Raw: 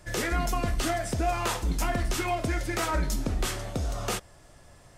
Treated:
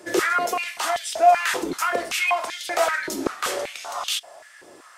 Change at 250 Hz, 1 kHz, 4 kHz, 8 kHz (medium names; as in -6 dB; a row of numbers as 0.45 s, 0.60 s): +0.5 dB, +9.5 dB, +7.5 dB, +4.5 dB